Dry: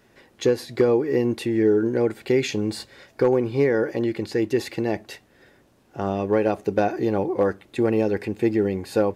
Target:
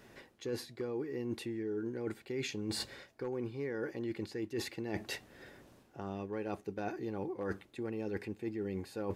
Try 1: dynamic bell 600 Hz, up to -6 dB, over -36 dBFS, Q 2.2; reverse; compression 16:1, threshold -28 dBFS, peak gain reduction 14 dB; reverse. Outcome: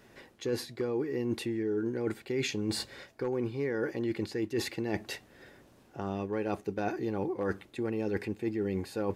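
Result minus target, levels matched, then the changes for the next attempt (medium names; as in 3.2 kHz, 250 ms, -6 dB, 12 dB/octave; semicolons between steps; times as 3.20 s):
compression: peak gain reduction -6 dB
change: compression 16:1, threshold -34.5 dBFS, peak gain reduction 20.5 dB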